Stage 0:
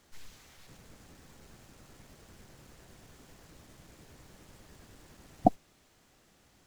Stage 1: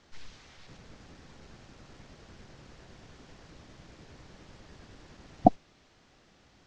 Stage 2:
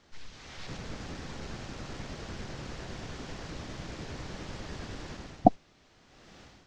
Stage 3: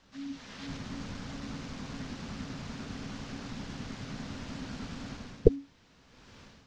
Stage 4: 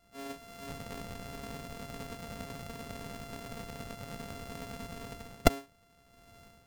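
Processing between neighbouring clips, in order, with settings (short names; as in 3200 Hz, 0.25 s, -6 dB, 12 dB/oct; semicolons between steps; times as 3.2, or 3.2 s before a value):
LPF 5900 Hz 24 dB/oct; gain +3.5 dB
AGC gain up to 12.5 dB; gain -1 dB
frequency shift -280 Hz
sample sorter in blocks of 64 samples; gain -3 dB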